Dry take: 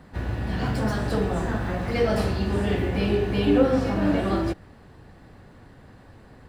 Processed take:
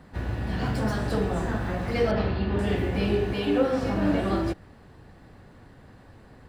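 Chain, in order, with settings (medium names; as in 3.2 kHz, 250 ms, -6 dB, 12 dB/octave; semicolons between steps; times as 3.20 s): 2.11–2.59 s: low-pass 3.8 kHz 24 dB/octave; 3.33–3.83 s: bass shelf 210 Hz -10 dB; trim -1.5 dB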